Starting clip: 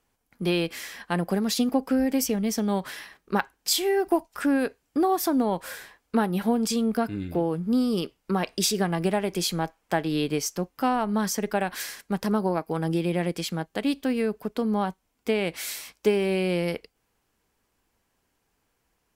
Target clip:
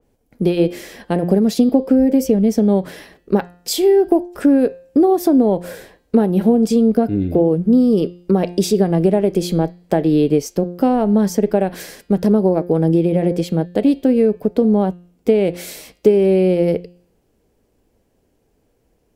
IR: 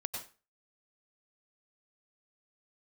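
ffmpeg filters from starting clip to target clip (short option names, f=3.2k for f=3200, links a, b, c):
-af "lowshelf=f=760:t=q:w=1.5:g=11,acompressor=threshold=-14dB:ratio=2,bandreject=f=176.1:t=h:w=4,bandreject=f=352.2:t=h:w=4,bandreject=f=528.3:t=h:w=4,bandreject=f=704.4:t=h:w=4,bandreject=f=880.5:t=h:w=4,bandreject=f=1.0566k:t=h:w=4,bandreject=f=1.2327k:t=h:w=4,bandreject=f=1.4088k:t=h:w=4,bandreject=f=1.5849k:t=h:w=4,bandreject=f=1.761k:t=h:w=4,bandreject=f=1.9371k:t=h:w=4,bandreject=f=2.1132k:t=h:w=4,bandreject=f=2.2893k:t=h:w=4,bandreject=f=2.4654k:t=h:w=4,bandreject=f=2.6415k:t=h:w=4,bandreject=f=2.8176k:t=h:w=4,bandreject=f=2.9937k:t=h:w=4,bandreject=f=3.1698k:t=h:w=4,bandreject=f=3.3459k:t=h:w=4,bandreject=f=3.522k:t=h:w=4,bandreject=f=3.6981k:t=h:w=4,bandreject=f=3.8742k:t=h:w=4,bandreject=f=4.0503k:t=h:w=4,bandreject=f=4.2264k:t=h:w=4,bandreject=f=4.4025k:t=h:w=4,bandreject=f=4.5786k:t=h:w=4,bandreject=f=4.7547k:t=h:w=4,bandreject=f=4.9308k:t=h:w=4,adynamicequalizer=threshold=0.0141:dfrequency=2500:dqfactor=0.7:tfrequency=2500:tqfactor=0.7:attack=5:release=100:ratio=0.375:range=1.5:mode=cutabove:tftype=highshelf,volume=2dB"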